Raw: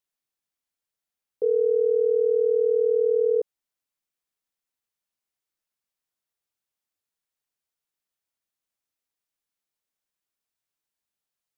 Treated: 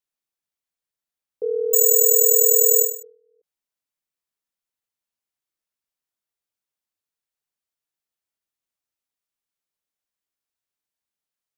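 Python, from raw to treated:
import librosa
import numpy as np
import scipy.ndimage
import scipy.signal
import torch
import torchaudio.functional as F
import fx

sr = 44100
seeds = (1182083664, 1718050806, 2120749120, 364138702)

y = fx.resample_bad(x, sr, factor=6, down='none', up='zero_stuff', at=(1.73, 3.03))
y = fx.end_taper(y, sr, db_per_s=120.0)
y = y * 10.0 ** (-2.0 / 20.0)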